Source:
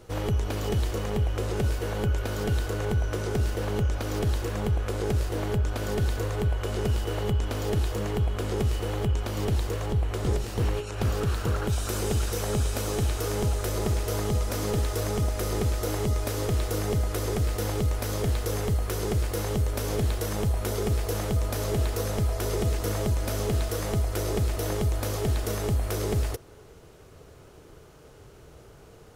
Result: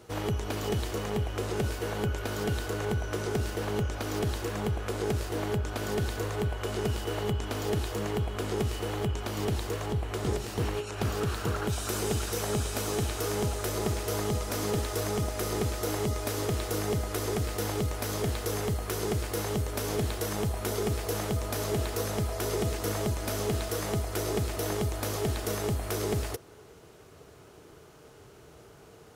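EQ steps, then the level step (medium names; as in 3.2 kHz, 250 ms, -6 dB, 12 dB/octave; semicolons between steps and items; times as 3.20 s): high-pass 140 Hz 6 dB/octave; band-stop 530 Hz, Q 12; 0.0 dB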